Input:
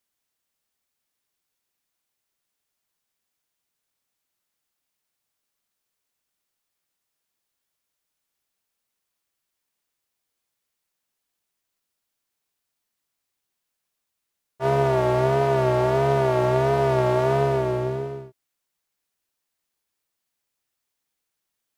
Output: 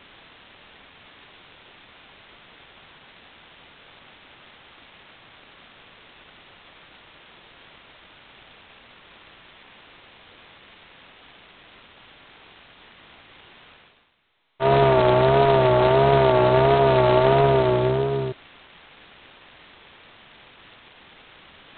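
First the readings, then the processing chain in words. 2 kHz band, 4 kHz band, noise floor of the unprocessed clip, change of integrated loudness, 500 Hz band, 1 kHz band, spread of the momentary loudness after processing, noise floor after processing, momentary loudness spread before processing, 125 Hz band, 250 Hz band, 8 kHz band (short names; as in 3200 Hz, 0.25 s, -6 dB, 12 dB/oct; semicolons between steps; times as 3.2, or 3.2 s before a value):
+5.0 dB, +9.5 dB, -81 dBFS, +3.5 dB, +4.0 dB, +5.0 dB, 7 LU, -51 dBFS, 8 LU, +1.5 dB, +3.5 dB, n/a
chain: reverse; upward compressor, threshold -23 dBFS; reverse; gain +6 dB; G.726 16 kbps 8000 Hz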